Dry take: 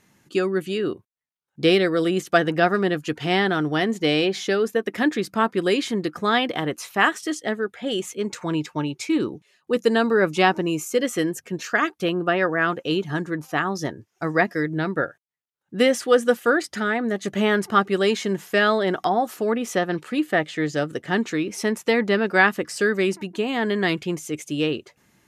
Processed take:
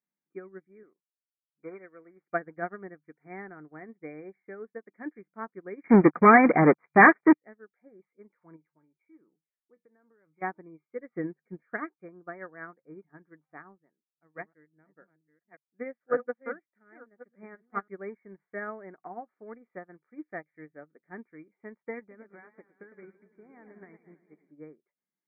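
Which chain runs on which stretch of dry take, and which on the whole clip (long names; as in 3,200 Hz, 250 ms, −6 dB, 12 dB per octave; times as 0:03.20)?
0:00.83–0:02.25: running median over 15 samples + spectral tilt +3 dB per octave
0:05.84–0:07.33: low-pass filter 3,100 Hz 6 dB per octave + leveller curve on the samples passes 5
0:08.56–0:10.42: downward compressor 8 to 1, threshold −21 dBFS + tuned comb filter 160 Hz, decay 0.21 s, mix 50%
0:11.12–0:11.97: mu-law and A-law mismatch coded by mu + low-shelf EQ 450 Hz +7.5 dB
0:13.78–0:17.88: delay that plays each chunk backwards 596 ms, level −4 dB + expander for the loud parts, over −30 dBFS
0:21.99–0:24.51: downward compressor 5 to 1, threshold −20 dBFS + high-frequency loss of the air 130 metres + feedback echo with a swinging delay time 112 ms, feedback 73%, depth 214 cents, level −8.5 dB
whole clip: brick-wall band-pass 150–2,400 Hz; expander for the loud parts 2.5 to 1, over −30 dBFS; level −3.5 dB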